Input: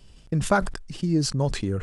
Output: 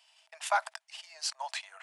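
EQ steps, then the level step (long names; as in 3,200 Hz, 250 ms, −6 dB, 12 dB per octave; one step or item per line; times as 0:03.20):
Chebyshev high-pass with heavy ripple 630 Hz, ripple 6 dB
0.0 dB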